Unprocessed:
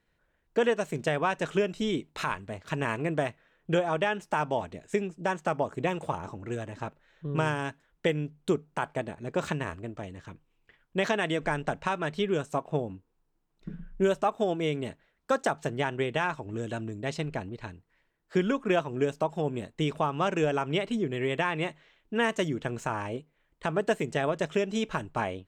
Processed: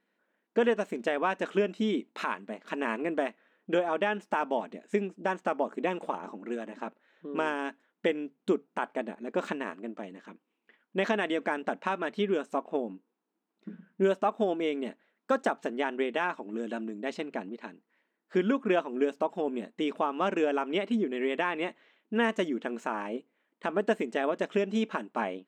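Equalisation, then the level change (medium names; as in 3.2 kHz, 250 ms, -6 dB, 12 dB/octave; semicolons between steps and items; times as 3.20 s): brick-wall FIR high-pass 190 Hz; tone controls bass +6 dB, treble -8 dB; -1.0 dB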